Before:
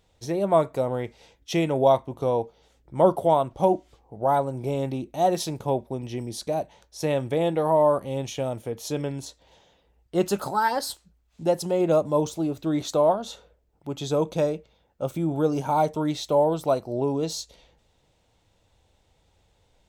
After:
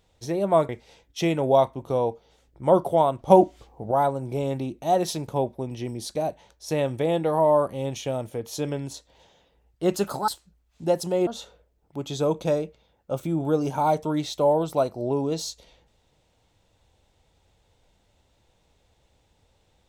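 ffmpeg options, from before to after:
ffmpeg -i in.wav -filter_complex "[0:a]asplit=6[link_01][link_02][link_03][link_04][link_05][link_06];[link_01]atrim=end=0.692[link_07];[link_02]atrim=start=1.008:end=3.622[link_08];[link_03]atrim=start=3.618:end=4.232,asetpts=PTS-STARTPTS,volume=6dB[link_09];[link_04]atrim=start=4.228:end=10.602[link_10];[link_05]atrim=start=10.868:end=11.862[link_11];[link_06]atrim=start=13.178[link_12];[link_07][link_08]acrossfade=duration=0.004:curve1=hsin:curve2=hsin[link_13];[link_13][link_09]acrossfade=duration=0.004:curve1=hsin:curve2=hsin[link_14];[link_14][link_10]acrossfade=duration=0.004:curve1=hsin:curve2=hsin[link_15];[link_15][link_11]acrossfade=duration=0.004:curve1=hsin:curve2=hsin[link_16];[link_16][link_12]acrossfade=duration=0.004:curve1=hsin:curve2=hsin" out.wav

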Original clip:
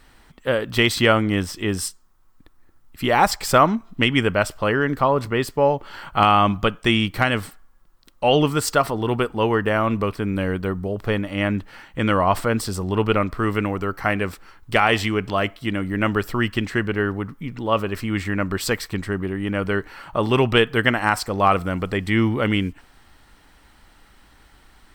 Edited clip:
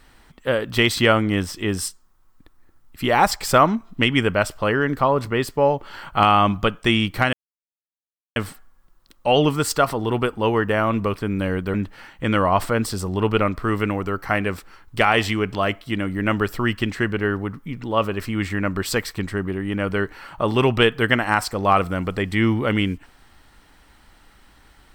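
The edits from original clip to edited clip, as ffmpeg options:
ffmpeg -i in.wav -filter_complex "[0:a]asplit=3[link_01][link_02][link_03];[link_01]atrim=end=7.33,asetpts=PTS-STARTPTS,afade=type=out:start_time=7.326:duration=0.004:curve=hsin,apad=pad_dur=1.03[link_04];[link_02]atrim=start=7.33:end=10.712,asetpts=PTS-STARTPTS,afade=type=in:duration=0.004:curve=hsin[link_05];[link_03]atrim=start=11.488[link_06];[link_04][link_05]concat=n=2:v=0:a=1[link_07];[link_07][link_06]acrossfade=duration=0.004:curve1=hsin:curve2=hsin" out.wav

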